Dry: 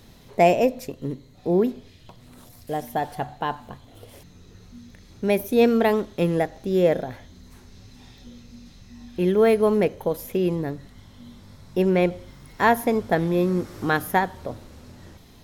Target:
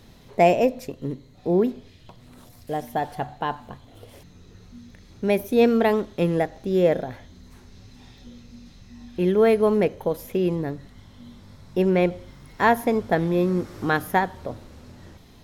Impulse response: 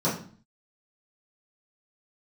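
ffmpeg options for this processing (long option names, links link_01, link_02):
-af "highshelf=frequency=6800:gain=-5"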